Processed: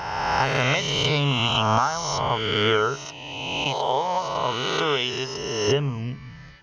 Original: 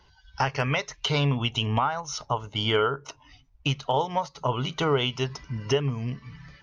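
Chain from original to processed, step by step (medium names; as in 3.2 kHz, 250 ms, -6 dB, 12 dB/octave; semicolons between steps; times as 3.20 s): reverse spectral sustain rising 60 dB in 1.88 s; 3.05–5.68 s: bass shelf 260 Hz -10.5 dB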